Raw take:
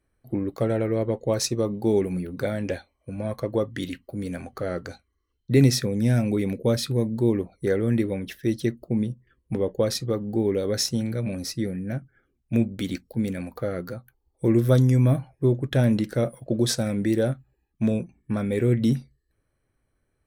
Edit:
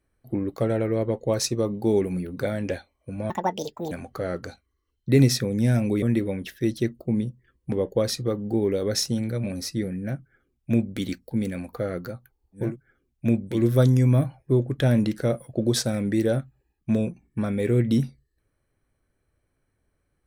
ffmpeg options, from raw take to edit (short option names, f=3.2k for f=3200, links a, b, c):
-filter_complex "[0:a]asplit=6[a][b][c][d][e][f];[a]atrim=end=3.304[g];[b]atrim=start=3.3:end=4.33,asetpts=PTS-STARTPTS,asetrate=74088,aresample=44100[h];[c]atrim=start=4.326:end=6.442[i];[d]atrim=start=7.848:end=14.59[j];[e]atrim=start=11.8:end=12.94[k];[f]atrim=start=14.35[l];[g][h]acrossfade=d=0.004:c1=hsin:c2=hsin[m];[m][i]acrossfade=d=0.004:c1=hsin:c2=hsin[n];[n][j]acrossfade=d=0.004:c1=hsin:c2=hsin[o];[o][k]acrossfade=d=0.24:c1=tri:c2=tri[p];[p][l]acrossfade=d=0.24:c1=tri:c2=tri"